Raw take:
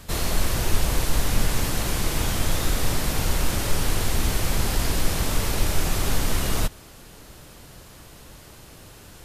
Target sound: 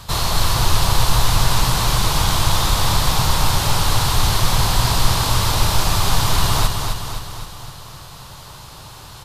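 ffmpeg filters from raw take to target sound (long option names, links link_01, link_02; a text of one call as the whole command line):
ffmpeg -i in.wav -af "equalizer=frequency=125:width_type=o:width=1:gain=7,equalizer=frequency=250:width_type=o:width=1:gain=-7,equalizer=frequency=500:width_type=o:width=1:gain=-3,equalizer=frequency=1000:width_type=o:width=1:gain=11,equalizer=frequency=2000:width_type=o:width=1:gain=-4,equalizer=frequency=4000:width_type=o:width=1:gain=8,aecho=1:1:259|518|777|1036|1295|1554|1813:0.531|0.297|0.166|0.0932|0.0522|0.0292|0.0164,volume=3dB" out.wav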